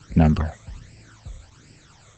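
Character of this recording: a quantiser's noise floor 8-bit, dither triangular; phasing stages 12, 1.3 Hz, lowest notch 270–1200 Hz; Opus

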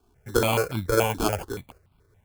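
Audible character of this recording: aliases and images of a low sample rate 1.9 kHz, jitter 0%; notches that jump at a steady rate 7 Hz 530–1800 Hz

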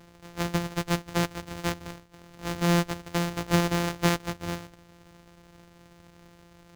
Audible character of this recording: a buzz of ramps at a fixed pitch in blocks of 256 samples; Nellymoser

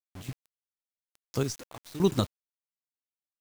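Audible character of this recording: random-step tremolo 3.5 Hz, depth 90%; a quantiser's noise floor 8-bit, dither none

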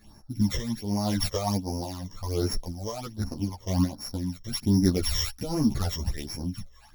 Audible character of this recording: a buzz of ramps at a fixed pitch in blocks of 8 samples; phasing stages 12, 1.3 Hz, lowest notch 240–3300 Hz; tremolo triangle 0.88 Hz, depth 70%; a shimmering, thickened sound

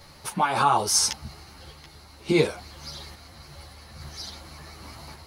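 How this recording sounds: a quantiser's noise floor 12-bit, dither none; random-step tremolo; a shimmering, thickened sound

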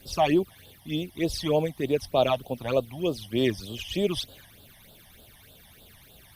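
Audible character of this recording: a quantiser's noise floor 12-bit, dither none; phasing stages 12, 3.3 Hz, lowest notch 410–2100 Hz; Opus

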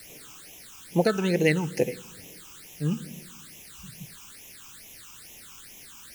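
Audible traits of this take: a quantiser's noise floor 8-bit, dither triangular; phasing stages 8, 2.3 Hz, lowest notch 550–1400 Hz; AC-3

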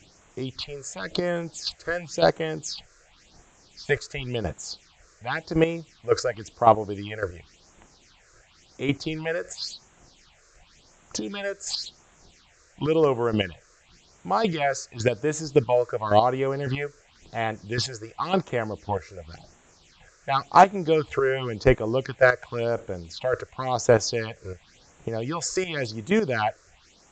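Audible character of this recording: chopped level 1.8 Hz, depth 65%, duty 15%; a quantiser's noise floor 10-bit, dither triangular; phasing stages 6, 0.93 Hz, lowest notch 210–4700 Hz; AAC

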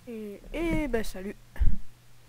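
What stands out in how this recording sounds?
noise floor -55 dBFS; spectral tilt -6.5 dB/octave

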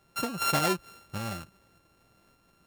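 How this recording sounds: a buzz of ramps at a fixed pitch in blocks of 32 samples; tremolo saw up 1.7 Hz, depth 35%

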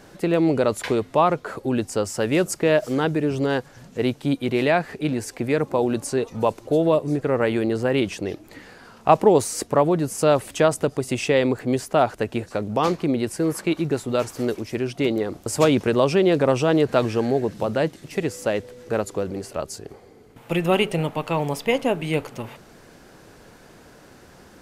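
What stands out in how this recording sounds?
noise floor -49 dBFS; spectral tilt -5.5 dB/octave

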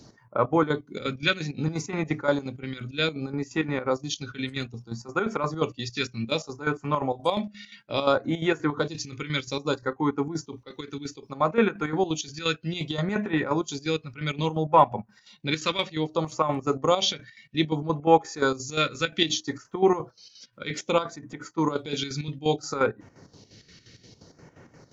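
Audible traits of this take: chopped level 5.7 Hz, depth 65%, duty 60%; phasing stages 2, 0.62 Hz, lowest notch 780–4000 Hz

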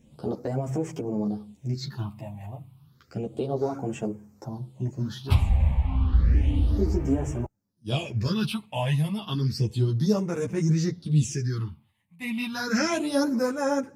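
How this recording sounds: phasing stages 6, 0.31 Hz, lowest notch 370–4000 Hz; tremolo triangle 0.64 Hz, depth 35%; a shimmering, thickened sound

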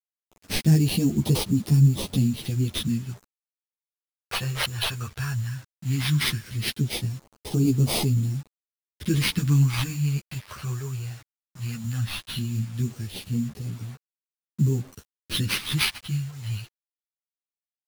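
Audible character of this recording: aliases and images of a low sample rate 7.1 kHz, jitter 0%; phasing stages 2, 0.16 Hz, lowest notch 250–1600 Hz; a quantiser's noise floor 8-bit, dither none; a shimmering, thickened sound

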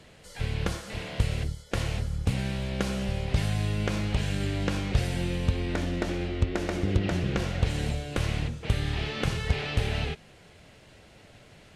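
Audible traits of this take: Vorbis

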